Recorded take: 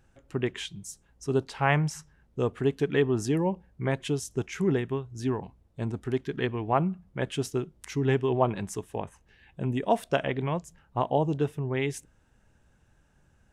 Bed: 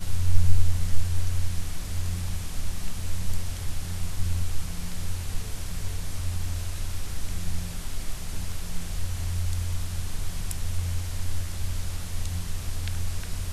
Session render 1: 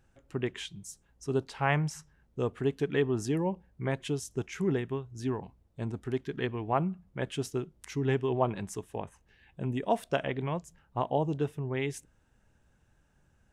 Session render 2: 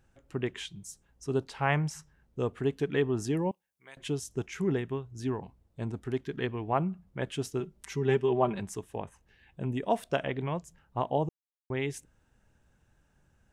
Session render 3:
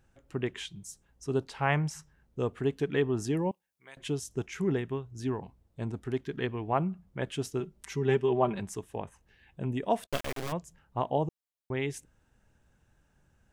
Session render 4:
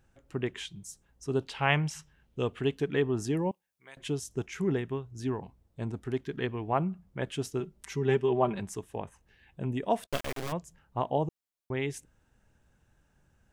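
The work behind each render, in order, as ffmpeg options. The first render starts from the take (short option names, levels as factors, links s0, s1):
-af "volume=0.668"
-filter_complex "[0:a]asettb=1/sr,asplit=3[s0][s1][s2];[s0]atrim=end=3.514[s3];[s1]atrim=start=3.51:end=3.97,asetpts=PTS-STARTPTS,afade=t=in:d=0.004:c=qsin,afade=t=out:st=0.456:d=0.004:c=qsin,aderivative[s4];[s2]atrim=start=3.966[s5];[s3][s4]acrossfade=d=0.004:c1=hsin:c2=qsin[s6];[s6][s5]acrossfade=d=0.004:c1=qsin:c2=hsin,asettb=1/sr,asplit=3[s7][s8][s9];[s7]atrim=end=7.604[s10];[s8]atrim=start=7.6:end=8.6,asetpts=PTS-STARTPTS,afade=t=in:d=0.004:c=qsin,afade=t=out:st=0.996:d=0.004:c=qsin,aecho=1:1:5.1:0.66,atrim=end_sample=44100[s11];[s9]atrim=start=8.596[s12];[s10][s11]acrossfade=d=0.004:c1=hsin:c2=qsin[s13];[s13][s12]acrossfade=d=0.004:c1=qsin:c2=hsin,asplit=3[s14][s15][s16];[s14]atrim=end=11.29,asetpts=PTS-STARTPTS,afade=t=out:st=11.286:d=0.004:c=hsin[s17];[s15]atrim=start=11.29:end=11.7,asetpts=PTS-STARTPTS,volume=0[s18];[s16]atrim=start=11.7,asetpts=PTS-STARTPTS,afade=t=in:d=0.004:c=hsin[s19];[s17][s18][s19]concat=n=3:v=0:a=1"
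-filter_complex "[0:a]asplit=3[s0][s1][s2];[s0]afade=t=out:st=10.05:d=0.02[s3];[s1]acrusher=bits=3:dc=4:mix=0:aa=0.000001,afade=t=in:st=10.05:d=0.02,afade=t=out:st=10.51:d=0.02[s4];[s2]afade=t=in:st=10.51:d=0.02[s5];[s3][s4][s5]amix=inputs=3:normalize=0"
-filter_complex "[0:a]asettb=1/sr,asplit=3[s0][s1][s2];[s0]atrim=end=1.404[s3];[s1]atrim=start=1.4:end=2.77,asetpts=PTS-STARTPTS,afade=t=in:d=0.004:c=qsin,afade=t=out:st=1.366:d=0.004:c=qsin,equalizer=f=3000:t=o:w=0.81:g=9.5[s4];[s2]atrim=start=2.766[s5];[s3][s4]acrossfade=d=0.004:c1=hsin:c2=qsin[s6];[s6][s5]acrossfade=d=0.004:c1=qsin:c2=hsin"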